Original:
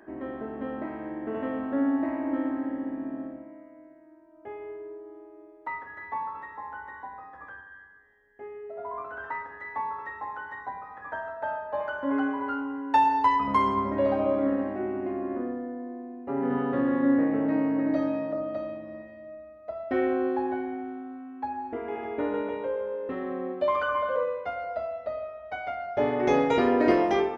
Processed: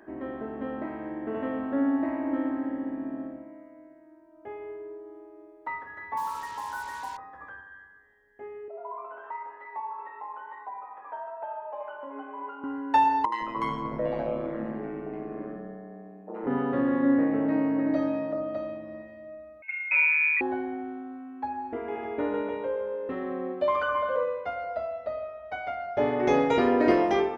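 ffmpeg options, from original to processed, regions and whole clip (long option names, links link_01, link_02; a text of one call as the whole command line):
ffmpeg -i in.wav -filter_complex "[0:a]asettb=1/sr,asplit=3[link_01][link_02][link_03];[link_01]atrim=end=6.174[link_04];[link_02]atrim=start=6.17:end=7.17,asetpts=PTS-STARTPTS,afade=type=in:duration=0.004:curve=qsin,afade=type=out:start_time=0.996:duration=0.004:curve=qsin,highshelf=frequency=2000:width_type=q:width=3:gain=-6.5,acrusher=bits=6:mix=0:aa=0.5,aeval=exprs='val(0)+0.0141*sin(2*PI*950*n/s)':channel_layout=same[link_05];[link_03]atrim=start=7.166[link_06];[link_04][link_05]acrossfade=duration=0.004:curve1=hsin:curve2=qsin[link_07];[link_07][link_06]acrossfade=duration=0.004:curve1=qsin:curve2=hsin,asettb=1/sr,asplit=3[link_08][link_09][link_10];[link_08]atrim=end=8.684[link_11];[link_09]atrim=start=8.68:end=12.64,asetpts=PTS-STARTPTS,afade=type=in:duration=0.004:curve=qsin,afade=type=out:start_time=3.956:duration=0.004:curve=qsin,acompressor=threshold=-37dB:ratio=2:attack=3.2:release=140:knee=1:detection=peak,flanger=delay=6.3:depth=8.2:regen=57:speed=1:shape=triangular,highpass=370,equalizer=frequency=400:width_type=q:width=4:gain=5,equalizer=frequency=640:width_type=q:width=4:gain=4,equalizer=frequency=950:width_type=q:width=4:gain=8,equalizer=frequency=1700:width_type=q:width=4:gain=-8,equalizer=frequency=2600:width_type=q:width=4:gain=5,lowpass=frequency=3200:width=0.5412,lowpass=frequency=3200:width=1.3066[link_12];[link_10]atrim=start=12.636[link_13];[link_11][link_12]acrossfade=duration=0.004:curve1=hsin:curve2=qsin[link_14];[link_14][link_13]acrossfade=duration=0.004:curve1=qsin:curve2=hsin,asettb=1/sr,asplit=3[link_15][link_16][link_17];[link_15]atrim=end=13.254[link_18];[link_16]atrim=start=13.25:end=16.47,asetpts=PTS-STARTPTS,afade=type=in:duration=0.004:curve=qsin,afade=type=out:start_time=3.216:duration=0.004:curve=qsin,aeval=exprs='val(0)*sin(2*PI*56*n/s)':channel_layout=same,acrossover=split=280|890[link_19][link_20][link_21];[link_21]adelay=70[link_22];[link_19]adelay=160[link_23];[link_23][link_20][link_22]amix=inputs=3:normalize=0,atrim=end_sample=142002[link_24];[link_17]atrim=start=16.466[link_25];[link_18][link_24]acrossfade=duration=0.004:curve1=hsin:curve2=qsin[link_26];[link_26][link_25]acrossfade=duration=0.004:curve1=qsin:curve2=hsin,asettb=1/sr,asplit=3[link_27][link_28][link_29];[link_27]atrim=end=19.624[link_30];[link_28]atrim=start=19.62:end=20.41,asetpts=PTS-STARTPTS,afade=type=in:duration=0.004:curve=qsin,afade=type=out:start_time=0.786:duration=0.004:curve=qsin,tiltshelf=frequency=650:gain=5.5,asplit=2[link_31][link_32];[link_32]adelay=44,volume=-6.5dB[link_33];[link_31][link_33]amix=inputs=2:normalize=0,atrim=end_sample=34839,lowpass=frequency=2400:width_type=q:width=0.5098,lowpass=frequency=2400:width_type=q:width=0.6013,lowpass=frequency=2400:width_type=q:width=0.9,lowpass=frequency=2400:width_type=q:width=2.563,afreqshift=-2800[link_34];[link_29]atrim=start=20.406[link_35];[link_30][link_34]acrossfade=duration=0.004:curve1=hsin:curve2=qsin[link_36];[link_36][link_35]acrossfade=duration=0.004:curve1=qsin:curve2=hsin" out.wav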